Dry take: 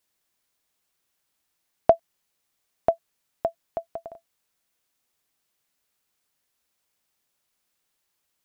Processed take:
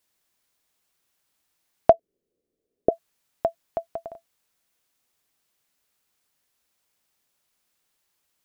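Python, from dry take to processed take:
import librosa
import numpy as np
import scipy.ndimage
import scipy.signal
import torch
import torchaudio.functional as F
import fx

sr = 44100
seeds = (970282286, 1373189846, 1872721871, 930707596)

y = fx.curve_eq(x, sr, hz=(140.0, 450.0, 860.0), db=(0, 14, -17), at=(1.92, 2.9), fade=0.02)
y = y * 10.0 ** (2.0 / 20.0)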